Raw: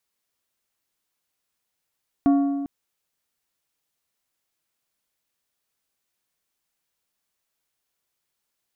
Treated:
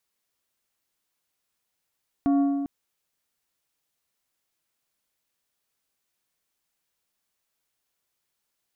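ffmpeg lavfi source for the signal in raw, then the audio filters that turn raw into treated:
-f lavfi -i "aevalsrc='0.224*pow(10,-3*t/1.66)*sin(2*PI*280*t)+0.0668*pow(10,-3*t/1.261)*sin(2*PI*700*t)+0.02*pow(10,-3*t/1.095)*sin(2*PI*1120*t)+0.00596*pow(10,-3*t/1.024)*sin(2*PI*1400*t)+0.00178*pow(10,-3*t/0.947)*sin(2*PI*1820*t)':duration=0.4:sample_rate=44100"
-af "alimiter=limit=-16dB:level=0:latency=1"

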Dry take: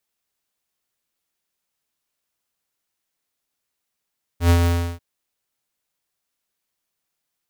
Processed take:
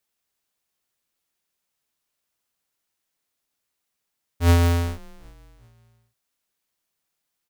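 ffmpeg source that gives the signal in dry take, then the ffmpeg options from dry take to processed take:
-f lavfi -i "aevalsrc='0.237*(2*lt(mod(85.8*t,1),0.5)-1)':duration=0.591:sample_rate=44100,afade=type=in:duration=0.099,afade=type=out:start_time=0.099:duration=0.078:silence=0.596,afade=type=out:start_time=0.25:duration=0.341"
-filter_complex "[0:a]asplit=4[link_01][link_02][link_03][link_04];[link_02]adelay=383,afreqshift=-67,volume=-23.5dB[link_05];[link_03]adelay=766,afreqshift=-134,volume=-31.2dB[link_06];[link_04]adelay=1149,afreqshift=-201,volume=-39dB[link_07];[link_01][link_05][link_06][link_07]amix=inputs=4:normalize=0"

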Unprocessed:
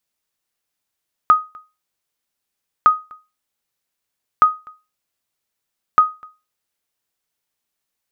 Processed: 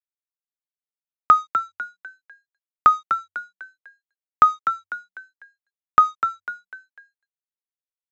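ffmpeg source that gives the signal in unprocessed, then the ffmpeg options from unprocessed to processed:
-f lavfi -i "aevalsrc='0.708*(sin(2*PI*1250*mod(t,1.56))*exp(-6.91*mod(t,1.56)/0.27)+0.0422*sin(2*PI*1250*max(mod(t,1.56)-0.25,0))*exp(-6.91*max(mod(t,1.56)-0.25,0)/0.27))':duration=6.24:sample_rate=44100"
-filter_complex "[0:a]aresample=16000,aeval=exprs='sgn(val(0))*max(abs(val(0))-0.00841,0)':channel_layout=same,aresample=44100,asplit=5[link_01][link_02][link_03][link_04][link_05];[link_02]adelay=249,afreqshift=94,volume=-8.5dB[link_06];[link_03]adelay=498,afreqshift=188,volume=-17.1dB[link_07];[link_04]adelay=747,afreqshift=282,volume=-25.8dB[link_08];[link_05]adelay=996,afreqshift=376,volume=-34.4dB[link_09];[link_01][link_06][link_07][link_08][link_09]amix=inputs=5:normalize=0"

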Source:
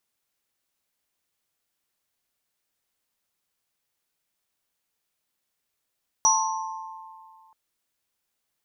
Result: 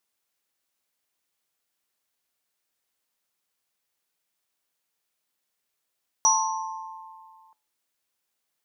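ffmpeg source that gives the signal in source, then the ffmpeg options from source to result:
-f lavfi -i "aevalsrc='0.0944*pow(10,-3*t/2.17)*sin(2*PI*886*t)+0.075*pow(10,-3*t/2.08)*sin(2*PI*1060*t)+0.178*pow(10,-3*t/0.68)*sin(2*PI*5830*t)':duration=1.28:sample_rate=44100"
-af "lowshelf=frequency=150:gain=-8.5,bandreject=frequency=143.6:width_type=h:width=4,bandreject=frequency=287.2:width_type=h:width=4,bandreject=frequency=430.8:width_type=h:width=4,bandreject=frequency=574.4:width_type=h:width=4,bandreject=frequency=718:width_type=h:width=4,bandreject=frequency=861.6:width_type=h:width=4,bandreject=frequency=1005.2:width_type=h:width=4,bandreject=frequency=1148.8:width_type=h:width=4,bandreject=frequency=1292.4:width_type=h:width=4,bandreject=frequency=1436:width_type=h:width=4,bandreject=frequency=1579.6:width_type=h:width=4,bandreject=frequency=1723.2:width_type=h:width=4,bandreject=frequency=1866.8:width_type=h:width=4,bandreject=frequency=2010.4:width_type=h:width=4,bandreject=frequency=2154:width_type=h:width=4,bandreject=frequency=2297.6:width_type=h:width=4,bandreject=frequency=2441.2:width_type=h:width=4,bandreject=frequency=2584.8:width_type=h:width=4,bandreject=frequency=2728.4:width_type=h:width=4,bandreject=frequency=2872:width_type=h:width=4,bandreject=frequency=3015.6:width_type=h:width=4,bandreject=frequency=3159.2:width_type=h:width=4,bandreject=frequency=3302.8:width_type=h:width=4,bandreject=frequency=3446.4:width_type=h:width=4,bandreject=frequency=3590:width_type=h:width=4,bandreject=frequency=3733.6:width_type=h:width=4,bandreject=frequency=3877.2:width_type=h:width=4"

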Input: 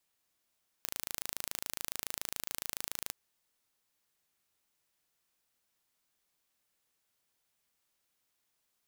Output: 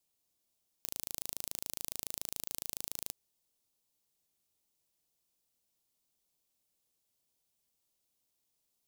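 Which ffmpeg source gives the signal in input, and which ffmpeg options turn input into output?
-f lavfi -i "aevalsrc='0.355*eq(mod(n,1627),0)':duration=2.26:sample_rate=44100"
-af "equalizer=frequency=1600:width_type=o:width=1.5:gain=-12.5"

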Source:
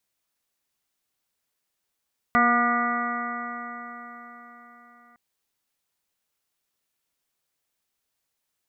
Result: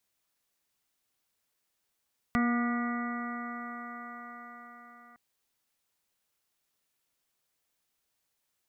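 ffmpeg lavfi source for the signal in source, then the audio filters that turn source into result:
-f lavfi -i "aevalsrc='0.0708*pow(10,-3*t/4.46)*sin(2*PI*238.09*t)+0.02*pow(10,-3*t/4.46)*sin(2*PI*476.73*t)+0.0708*pow(10,-3*t/4.46)*sin(2*PI*716.47*t)+0.0158*pow(10,-3*t/4.46)*sin(2*PI*957.85*t)+0.112*pow(10,-3*t/4.46)*sin(2*PI*1201.4*t)+0.0596*pow(10,-3*t/4.46)*sin(2*PI*1447.66*t)+0.00794*pow(10,-3*t/4.46)*sin(2*PI*1697.14*t)+0.0668*pow(10,-3*t/4.46)*sin(2*PI*1950.35*t)+0.0133*pow(10,-3*t/4.46)*sin(2*PI*2207.79*t)':duration=2.81:sample_rate=44100"
-filter_complex "[0:a]acrossover=split=360|3000[link_01][link_02][link_03];[link_02]acompressor=threshold=-42dB:ratio=2.5[link_04];[link_01][link_04][link_03]amix=inputs=3:normalize=0"

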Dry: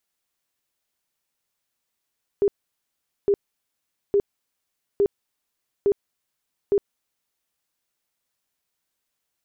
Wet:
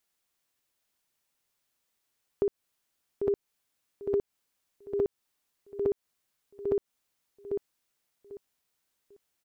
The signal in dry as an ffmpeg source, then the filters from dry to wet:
-f lavfi -i "aevalsrc='0.178*sin(2*PI*403*mod(t,0.86))*lt(mod(t,0.86),24/403)':duration=5.16:sample_rate=44100"
-filter_complex "[0:a]asplit=2[link_01][link_02];[link_02]aecho=0:1:795|1590|2385:0.316|0.0664|0.0139[link_03];[link_01][link_03]amix=inputs=2:normalize=0,acompressor=threshold=-26dB:ratio=4"

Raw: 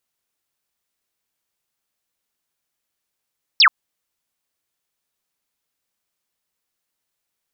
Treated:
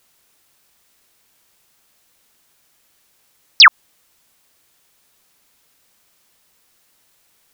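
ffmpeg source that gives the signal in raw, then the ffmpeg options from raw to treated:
-f lavfi -i "aevalsrc='0.398*clip(t/0.002,0,1)*clip((0.08-t)/0.002,0,1)*sin(2*PI*5700*0.08/log(990/5700)*(exp(log(990/5700)*t/0.08)-1))':duration=0.08:sample_rate=44100"
-filter_complex "[0:a]acrossover=split=2600[link_01][link_02];[link_02]acompressor=threshold=-25dB:ratio=4:attack=1:release=60[link_03];[link_01][link_03]amix=inputs=2:normalize=0,alimiter=level_in=19.5dB:limit=-1dB:release=50:level=0:latency=1"

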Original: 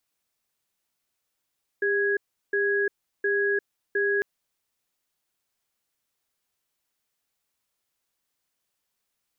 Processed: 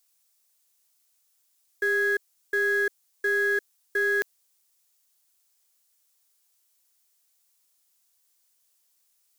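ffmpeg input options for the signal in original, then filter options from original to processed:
-f lavfi -i "aevalsrc='0.0631*(sin(2*PI*402*t)+sin(2*PI*1660*t))*clip(min(mod(t,0.71),0.35-mod(t,0.71))/0.005,0,1)':duration=2.4:sample_rate=44100"
-filter_complex "[0:a]lowshelf=frequency=180:gain=-7.5,asplit=2[link_01][link_02];[link_02]acrusher=bits=4:dc=4:mix=0:aa=0.000001,volume=-11.5dB[link_03];[link_01][link_03]amix=inputs=2:normalize=0,bass=frequency=250:gain=-12,treble=frequency=4000:gain=12"

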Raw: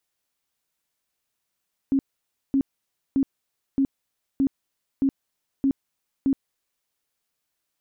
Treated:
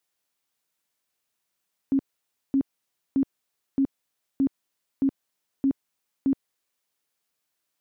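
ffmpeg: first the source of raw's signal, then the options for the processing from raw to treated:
-f lavfi -i "aevalsrc='0.141*sin(2*PI*272*mod(t,0.62))*lt(mod(t,0.62),19/272)':duration=4.96:sample_rate=44100"
-af "highpass=frequency=130:poles=1"

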